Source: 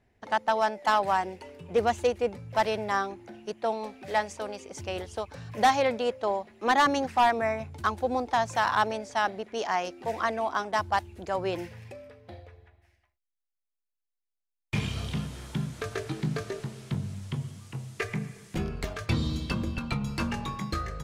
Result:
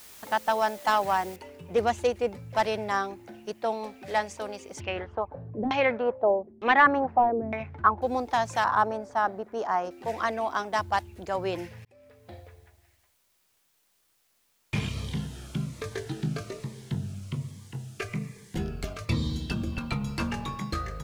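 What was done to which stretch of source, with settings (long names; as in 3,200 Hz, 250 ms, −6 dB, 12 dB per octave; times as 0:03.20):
0:01.36: noise floor change −49 dB −70 dB
0:04.80–0:08.02: auto-filter low-pass saw down 1.1 Hz 250–3,200 Hz
0:08.64–0:09.91: high shelf with overshoot 1,800 Hz −10 dB, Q 1.5
0:11.85–0:12.33: fade in
0:14.89–0:19.72: phaser whose notches keep moving one way falling 1.2 Hz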